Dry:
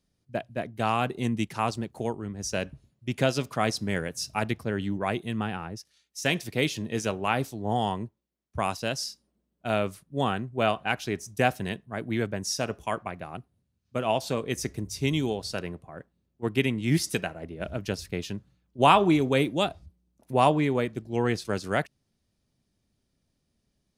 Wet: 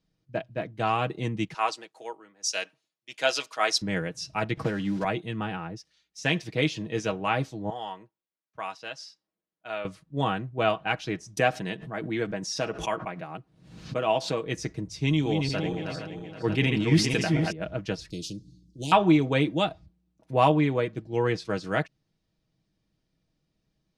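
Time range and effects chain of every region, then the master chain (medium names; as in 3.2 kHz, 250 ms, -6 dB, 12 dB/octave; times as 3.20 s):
1.54–3.82 s: high-pass 420 Hz + tilt EQ +3 dB/octave + three bands expanded up and down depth 70%
4.57–5.05 s: block-companded coder 5-bit + doubling 15 ms -14 dB + three bands compressed up and down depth 100%
7.70–9.85 s: high-pass 1.5 kHz 6 dB/octave + treble shelf 3.2 kHz -10 dB
11.37–14.46 s: peaking EQ 82 Hz -13.5 dB 0.85 oct + swell ahead of each attack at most 84 dB/s
15.02–17.52 s: backward echo that repeats 235 ms, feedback 56%, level -4.5 dB + decay stretcher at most 36 dB/s
18.10–18.92 s: Chebyshev band-stop 320–4800 Hz, order 3 + spectrum-flattening compressor 2:1
whole clip: low-pass 5.2 kHz 12 dB/octave; comb 6.3 ms, depth 57%; trim -1 dB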